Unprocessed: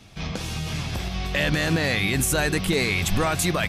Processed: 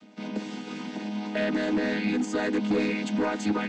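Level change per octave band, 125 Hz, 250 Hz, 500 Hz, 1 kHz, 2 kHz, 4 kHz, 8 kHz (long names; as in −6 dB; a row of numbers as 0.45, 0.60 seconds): −13.0, +1.5, −2.5, −5.0, −8.5, −11.5, −17.0 decibels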